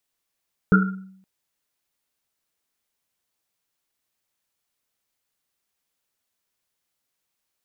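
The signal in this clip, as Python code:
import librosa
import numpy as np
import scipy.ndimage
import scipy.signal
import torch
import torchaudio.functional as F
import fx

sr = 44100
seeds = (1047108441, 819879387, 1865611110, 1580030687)

y = fx.risset_drum(sr, seeds[0], length_s=0.52, hz=190.0, decay_s=0.72, noise_hz=1400.0, noise_width_hz=130.0, noise_pct=40)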